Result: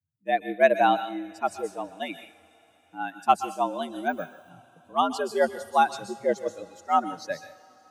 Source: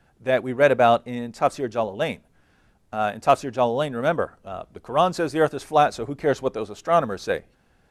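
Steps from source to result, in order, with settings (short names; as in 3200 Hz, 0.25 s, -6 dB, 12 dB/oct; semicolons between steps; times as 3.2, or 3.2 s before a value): per-bin expansion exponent 2; frequency shift +82 Hz; on a send at -1 dB: pre-emphasis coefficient 0.8 + reverb, pre-delay 0.121 s; 4.09–4.5 on the sum: careless resampling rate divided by 2×, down none, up hold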